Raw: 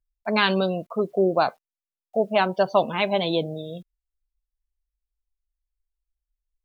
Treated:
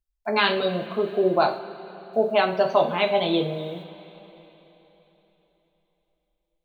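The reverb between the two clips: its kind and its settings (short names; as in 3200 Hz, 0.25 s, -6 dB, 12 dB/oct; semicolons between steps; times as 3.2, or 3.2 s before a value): two-slope reverb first 0.38 s, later 3.8 s, from -18 dB, DRR 2.5 dB; gain -1.5 dB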